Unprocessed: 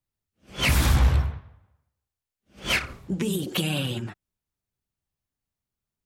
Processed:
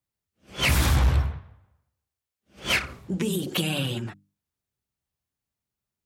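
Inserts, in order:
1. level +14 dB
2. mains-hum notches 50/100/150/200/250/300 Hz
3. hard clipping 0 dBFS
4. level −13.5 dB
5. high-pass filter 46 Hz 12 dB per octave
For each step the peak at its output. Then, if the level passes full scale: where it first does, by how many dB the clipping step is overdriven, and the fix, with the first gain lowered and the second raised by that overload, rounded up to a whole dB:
+3.5, +4.0, 0.0, −13.5, −10.0 dBFS
step 1, 4.0 dB
step 1 +10 dB, step 4 −9.5 dB

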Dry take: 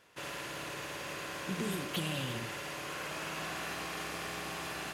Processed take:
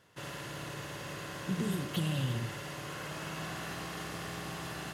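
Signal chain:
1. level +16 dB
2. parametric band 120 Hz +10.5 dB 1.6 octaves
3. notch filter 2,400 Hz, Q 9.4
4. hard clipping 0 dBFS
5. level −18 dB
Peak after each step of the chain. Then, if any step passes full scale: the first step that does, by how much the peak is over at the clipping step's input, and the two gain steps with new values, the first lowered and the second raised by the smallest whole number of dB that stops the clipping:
−6.0, −3.5, −3.5, −3.5, −21.5 dBFS
no step passes full scale

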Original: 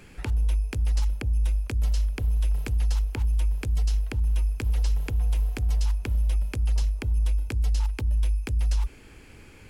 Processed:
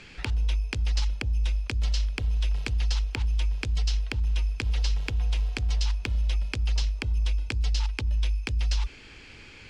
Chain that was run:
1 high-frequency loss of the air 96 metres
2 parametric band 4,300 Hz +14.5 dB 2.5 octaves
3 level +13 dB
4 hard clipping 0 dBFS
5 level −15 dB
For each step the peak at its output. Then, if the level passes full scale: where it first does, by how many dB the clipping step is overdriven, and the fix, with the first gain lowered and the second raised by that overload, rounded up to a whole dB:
−16.0, −9.0, +4.0, 0.0, −15.0 dBFS
step 3, 4.0 dB
step 3 +9 dB, step 5 −11 dB

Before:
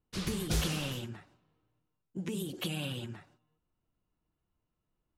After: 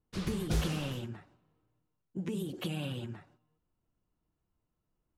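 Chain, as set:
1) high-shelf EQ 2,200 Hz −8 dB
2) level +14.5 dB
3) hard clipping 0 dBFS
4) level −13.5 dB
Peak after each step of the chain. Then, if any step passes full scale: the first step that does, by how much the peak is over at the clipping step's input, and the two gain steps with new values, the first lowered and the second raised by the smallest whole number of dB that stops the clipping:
−20.0, −5.5, −5.5, −19.0 dBFS
no step passes full scale

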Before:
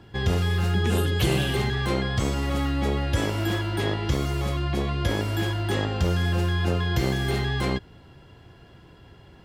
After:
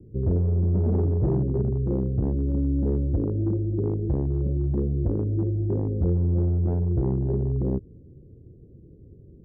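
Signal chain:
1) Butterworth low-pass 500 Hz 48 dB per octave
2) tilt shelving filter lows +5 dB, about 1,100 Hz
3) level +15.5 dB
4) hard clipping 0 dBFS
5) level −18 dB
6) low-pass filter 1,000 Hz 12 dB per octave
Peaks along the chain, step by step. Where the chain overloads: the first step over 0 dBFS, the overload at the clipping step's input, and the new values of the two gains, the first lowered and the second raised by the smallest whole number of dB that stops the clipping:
−12.5, −8.0, +7.5, 0.0, −18.0, −17.5 dBFS
step 3, 7.5 dB
step 3 +7.5 dB, step 5 −10 dB

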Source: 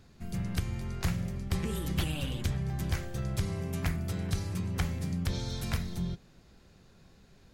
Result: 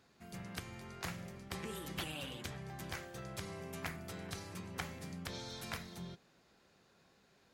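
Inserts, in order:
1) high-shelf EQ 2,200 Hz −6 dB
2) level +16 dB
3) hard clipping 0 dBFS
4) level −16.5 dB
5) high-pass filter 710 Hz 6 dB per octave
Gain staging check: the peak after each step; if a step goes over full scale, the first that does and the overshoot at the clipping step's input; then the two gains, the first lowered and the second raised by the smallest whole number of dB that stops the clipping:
−19.0, −3.0, −3.0, −19.5, −25.0 dBFS
no step passes full scale

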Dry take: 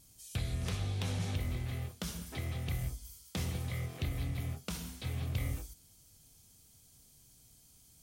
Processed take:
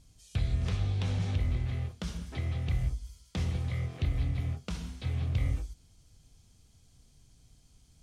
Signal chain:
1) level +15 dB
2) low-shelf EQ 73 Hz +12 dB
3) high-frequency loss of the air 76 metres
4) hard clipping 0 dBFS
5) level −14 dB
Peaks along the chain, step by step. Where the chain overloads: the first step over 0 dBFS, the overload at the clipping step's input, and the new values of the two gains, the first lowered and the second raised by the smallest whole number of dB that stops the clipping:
−10.0, −4.5, −4.5, −4.5, −18.5 dBFS
no step passes full scale

